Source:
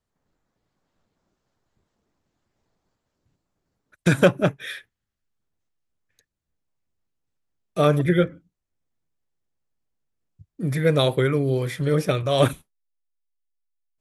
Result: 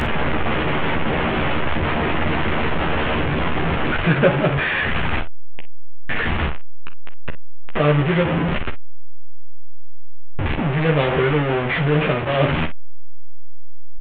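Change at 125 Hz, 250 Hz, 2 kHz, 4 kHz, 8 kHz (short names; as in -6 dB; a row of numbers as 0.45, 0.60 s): +5.0 dB, +5.0 dB, +11.0 dB, +5.5 dB, under -20 dB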